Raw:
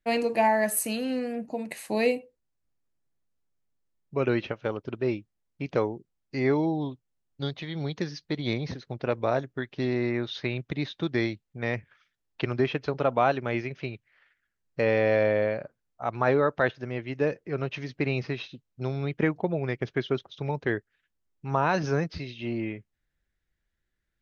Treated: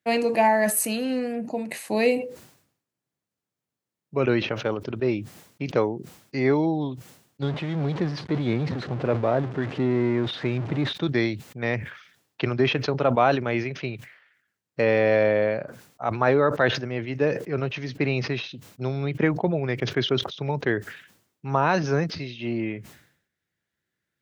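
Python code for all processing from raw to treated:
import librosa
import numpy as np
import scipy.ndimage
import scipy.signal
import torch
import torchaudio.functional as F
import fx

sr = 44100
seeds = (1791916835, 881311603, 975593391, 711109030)

y = fx.chain(x, sr, fx.zero_step(step_db=-29.0),
    fx.spacing_loss(db_at_10k=32), at=(7.42, 10.93))
y = scipy.signal.sosfilt(scipy.signal.butter(4, 100.0, 'highpass', fs=sr, output='sos'), y)
y = fx.sustainer(y, sr, db_per_s=91.0)
y = y * librosa.db_to_amplitude(3.0)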